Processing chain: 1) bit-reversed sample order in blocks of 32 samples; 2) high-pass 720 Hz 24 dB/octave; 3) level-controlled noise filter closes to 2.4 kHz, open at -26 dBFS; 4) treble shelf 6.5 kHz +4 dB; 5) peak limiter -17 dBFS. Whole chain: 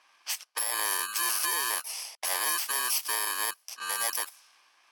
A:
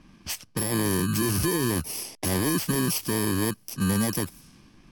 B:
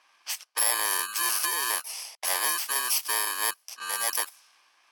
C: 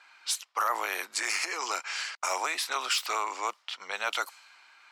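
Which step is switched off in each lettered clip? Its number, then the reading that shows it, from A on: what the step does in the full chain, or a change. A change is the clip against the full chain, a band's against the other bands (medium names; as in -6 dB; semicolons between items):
2, 250 Hz band +30.5 dB; 5, crest factor change +6.0 dB; 1, 8 kHz band -9.0 dB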